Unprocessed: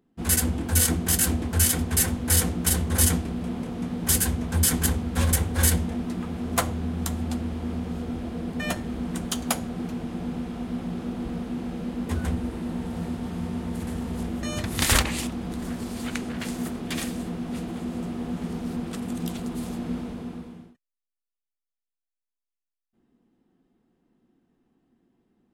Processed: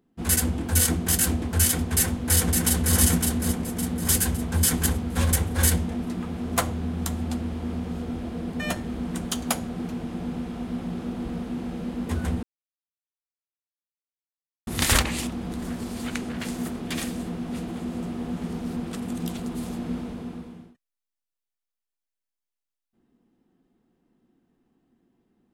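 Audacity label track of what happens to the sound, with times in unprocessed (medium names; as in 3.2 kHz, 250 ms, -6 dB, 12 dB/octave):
1.910000	2.950000	echo throw 560 ms, feedback 45%, level -3.5 dB
12.430000	14.670000	mute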